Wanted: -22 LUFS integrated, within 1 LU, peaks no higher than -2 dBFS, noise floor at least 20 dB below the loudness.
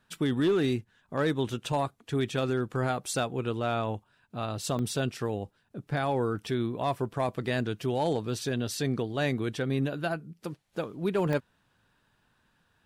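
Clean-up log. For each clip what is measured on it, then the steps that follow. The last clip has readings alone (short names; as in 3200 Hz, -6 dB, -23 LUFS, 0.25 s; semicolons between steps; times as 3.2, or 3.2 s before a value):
clipped 0.3%; flat tops at -19.5 dBFS; dropouts 2; longest dropout 1.4 ms; loudness -30.5 LUFS; peak -19.5 dBFS; loudness target -22.0 LUFS
-> clip repair -19.5 dBFS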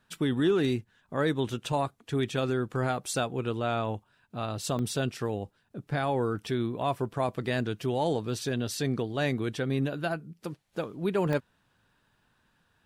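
clipped 0.0%; dropouts 2; longest dropout 1.4 ms
-> interpolate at 4.79/11.33, 1.4 ms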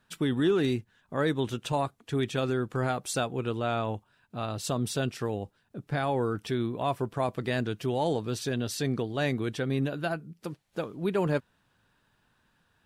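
dropouts 0; loudness -30.5 LUFS; peak -16.0 dBFS; loudness target -22.0 LUFS
-> gain +8.5 dB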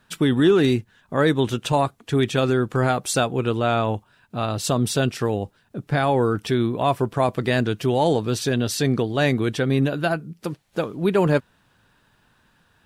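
loudness -22.0 LUFS; peak -7.5 dBFS; noise floor -62 dBFS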